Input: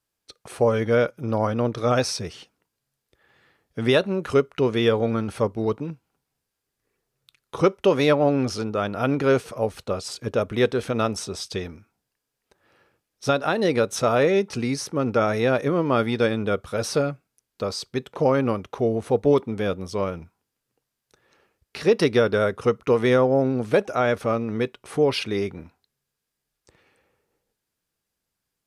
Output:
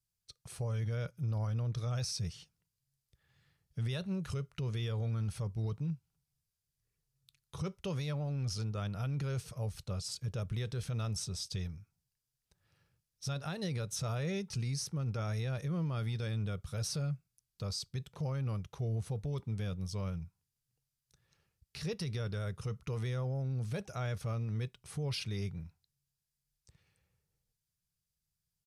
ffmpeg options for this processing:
ffmpeg -i in.wav -af "firequalizer=gain_entry='entry(160,0);entry(240,-20);entry(4900,-6)':delay=0.05:min_phase=1,alimiter=level_in=5dB:limit=-24dB:level=0:latency=1:release=20,volume=-5dB" out.wav

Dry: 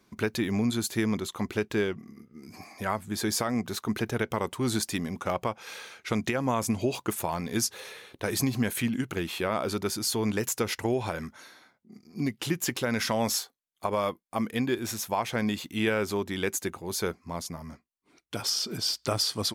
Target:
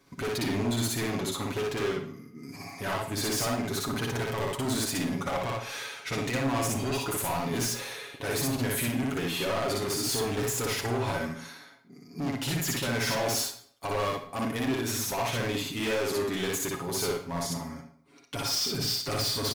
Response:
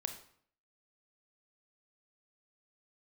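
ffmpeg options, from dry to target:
-filter_complex "[0:a]aecho=1:1:7.2:0.71,volume=29.5dB,asoftclip=hard,volume=-29.5dB,asplit=2[link_01][link_02];[1:a]atrim=start_sample=2205,adelay=59[link_03];[link_02][link_03]afir=irnorm=-1:irlink=0,volume=1dB[link_04];[link_01][link_04]amix=inputs=2:normalize=0"

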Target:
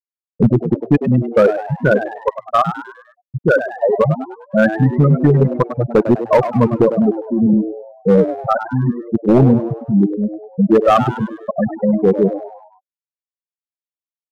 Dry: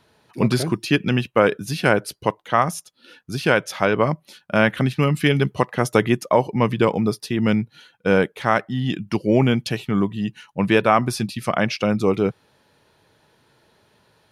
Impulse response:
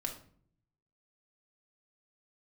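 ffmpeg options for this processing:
-filter_complex "[0:a]afftfilt=real='re*gte(hypot(re,im),0.631)':imag='im*gte(hypot(re,im),0.631)':win_size=1024:overlap=0.75,lowpass=2200,volume=13dB,asoftclip=hard,volume=-13dB,lowshelf=frequency=130:gain=3.5,asplit=2[link_01][link_02];[link_02]asplit=5[link_03][link_04][link_05][link_06][link_07];[link_03]adelay=101,afreqshift=110,volume=-11dB[link_08];[link_04]adelay=202,afreqshift=220,volume=-18.1dB[link_09];[link_05]adelay=303,afreqshift=330,volume=-25.3dB[link_10];[link_06]adelay=404,afreqshift=440,volume=-32.4dB[link_11];[link_07]adelay=505,afreqshift=550,volume=-39.5dB[link_12];[link_08][link_09][link_10][link_11][link_12]amix=inputs=5:normalize=0[link_13];[link_01][link_13]amix=inputs=2:normalize=0,volume=7.5dB"

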